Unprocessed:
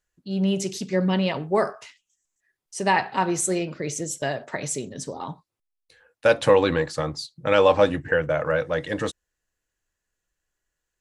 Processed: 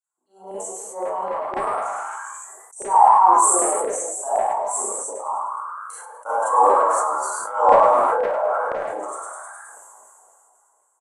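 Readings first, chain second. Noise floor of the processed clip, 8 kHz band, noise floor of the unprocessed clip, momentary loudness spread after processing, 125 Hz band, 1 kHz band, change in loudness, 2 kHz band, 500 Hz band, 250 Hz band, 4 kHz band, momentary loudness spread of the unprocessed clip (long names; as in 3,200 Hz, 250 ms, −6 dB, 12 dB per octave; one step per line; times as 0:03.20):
−64 dBFS, +8.5 dB, −83 dBFS, 20 LU, below −20 dB, +12.0 dB, +4.5 dB, −6.0 dB, 0.0 dB, −12.0 dB, below −15 dB, 12 LU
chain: inverse Chebyshev band-stop filter 1,700–5,200 Hz, stop band 40 dB
loudspeaker in its box 440–8,800 Hz, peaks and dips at 550 Hz −10 dB, 1,200 Hz −6 dB, 2,000 Hz +9 dB, 3,900 Hz +6 dB, 6,700 Hz −4 dB
auto-filter high-pass saw down 3.9 Hz 580–1,900 Hz
on a send: echo with shifted repeats 104 ms, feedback 39%, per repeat +78 Hz, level −6 dB
on the sum: four-comb reverb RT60 0.39 s, combs from 28 ms, DRR −9 dB
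level that may fall only so fast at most 20 dB per second
level −1 dB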